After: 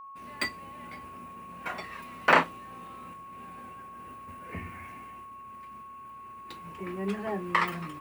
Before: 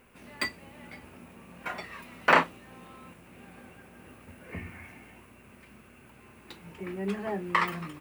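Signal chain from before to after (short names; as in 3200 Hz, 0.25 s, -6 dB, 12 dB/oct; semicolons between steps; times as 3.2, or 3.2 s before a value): expander -49 dBFS; whine 1100 Hz -43 dBFS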